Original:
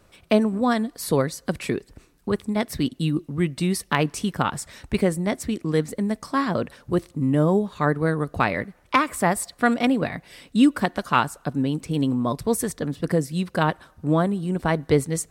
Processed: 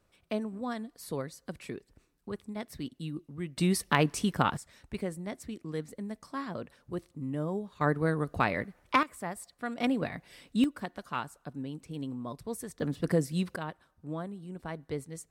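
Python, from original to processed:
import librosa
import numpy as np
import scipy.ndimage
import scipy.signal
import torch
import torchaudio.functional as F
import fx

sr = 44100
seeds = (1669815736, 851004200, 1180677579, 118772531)

y = fx.gain(x, sr, db=fx.steps((0.0, -14.5), (3.57, -3.5), (4.57, -14.0), (7.81, -6.0), (9.03, -16.5), (9.78, -8.0), (10.64, -15.0), (12.8, -5.0), (13.56, -17.0)))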